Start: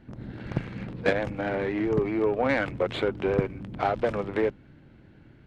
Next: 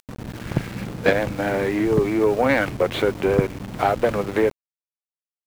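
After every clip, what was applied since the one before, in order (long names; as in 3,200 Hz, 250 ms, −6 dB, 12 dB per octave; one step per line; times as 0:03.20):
upward compression, threshold −48 dBFS
centre clipping without the shift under −39 dBFS
level +6 dB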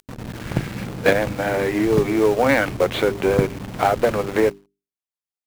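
mains-hum notches 50/100/150/200/250/300/350/400 Hz
in parallel at −5.5 dB: log-companded quantiser 4 bits
on the sum: level −2 dB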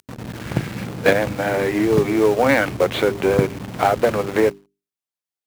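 high-pass filter 65 Hz
level +1 dB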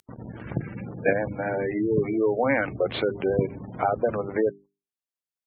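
gate on every frequency bin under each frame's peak −20 dB strong
level −6.5 dB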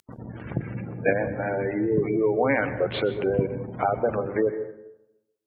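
convolution reverb RT60 0.90 s, pre-delay 118 ms, DRR 11.5 dB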